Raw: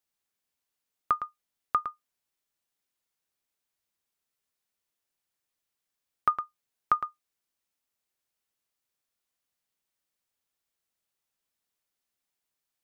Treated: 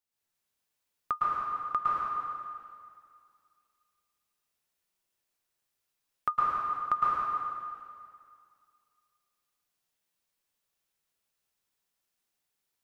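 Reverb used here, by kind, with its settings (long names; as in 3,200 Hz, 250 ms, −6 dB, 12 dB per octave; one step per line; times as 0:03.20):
dense smooth reverb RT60 2.2 s, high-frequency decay 0.95×, pre-delay 100 ms, DRR −7.5 dB
level −5.5 dB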